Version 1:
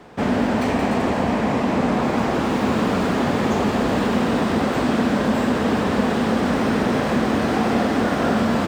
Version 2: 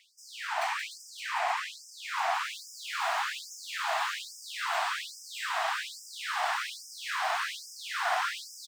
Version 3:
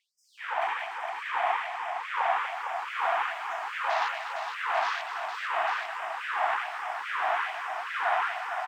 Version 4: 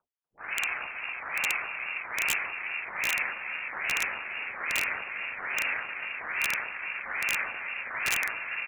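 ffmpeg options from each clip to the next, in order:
-af "aecho=1:1:570:0.531,afftfilt=real='re*gte(b*sr/1024,610*pow(5000/610,0.5+0.5*sin(2*PI*1.2*pts/sr)))':imag='im*gte(b*sr/1024,610*pow(5000/610,0.5+0.5*sin(2*PI*1.2*pts/sr)))':win_size=1024:overlap=0.75,volume=-3.5dB"
-filter_complex "[0:a]afwtdn=0.0126,lowshelf=f=490:g=9.5,asplit=2[a][b];[b]aecho=0:1:242|459|845:0.335|0.501|0.501[c];[a][c]amix=inputs=2:normalize=0"
-af "lowpass=f=2.8k:t=q:w=0.5098,lowpass=f=2.8k:t=q:w=0.6013,lowpass=f=2.8k:t=q:w=0.9,lowpass=f=2.8k:t=q:w=2.563,afreqshift=-3300,aeval=exprs='val(0)*sin(2*PI*160*n/s)':c=same,aeval=exprs='(mod(8.91*val(0)+1,2)-1)/8.91':c=same,volume=1.5dB"

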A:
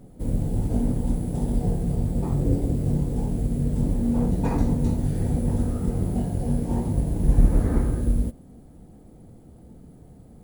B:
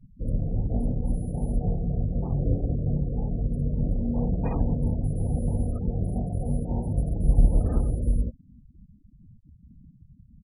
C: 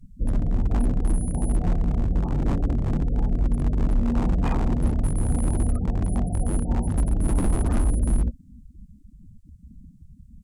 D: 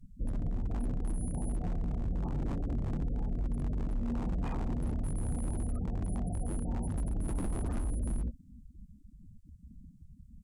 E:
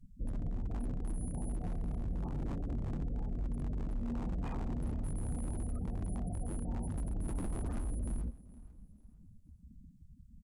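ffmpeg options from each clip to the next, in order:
-af "afftfilt=real='re*gte(hypot(re,im),0.0251)':imag='im*gte(hypot(re,im),0.0251)':win_size=1024:overlap=0.75,aecho=1:1:1.6:0.35,volume=-3.5dB"
-af "aeval=exprs='0.0891*(abs(mod(val(0)/0.0891+3,4)-2)-1)':c=same,equalizer=f=125:t=o:w=1:g=-9,equalizer=f=500:t=o:w=1:g=-10,equalizer=f=8k:t=o:w=1:g=10,volume=8.5dB"
-af "alimiter=limit=-20.5dB:level=0:latency=1:release=36,volume=-6dB"
-af "aecho=1:1:465|930|1395:0.1|0.034|0.0116,volume=-3.5dB"

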